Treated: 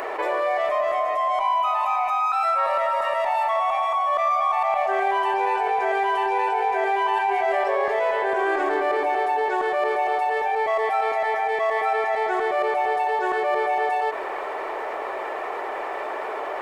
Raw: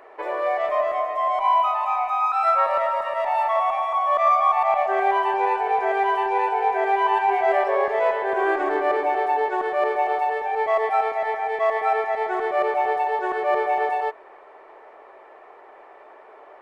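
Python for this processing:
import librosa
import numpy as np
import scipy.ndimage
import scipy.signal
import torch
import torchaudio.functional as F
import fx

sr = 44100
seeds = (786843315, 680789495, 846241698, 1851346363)

y = fx.high_shelf(x, sr, hz=3300.0, db=9.0)
y = fx.env_flatten(y, sr, amount_pct=70)
y = y * librosa.db_to_amplitude(-5.5)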